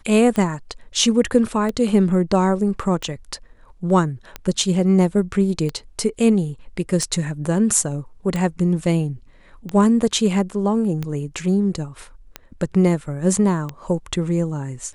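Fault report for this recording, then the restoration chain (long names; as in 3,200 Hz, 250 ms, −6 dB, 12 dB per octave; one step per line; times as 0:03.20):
scratch tick 45 rpm −13 dBFS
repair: click removal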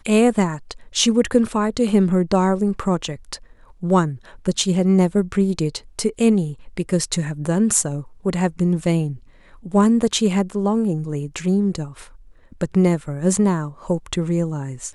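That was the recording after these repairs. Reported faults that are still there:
none of them is left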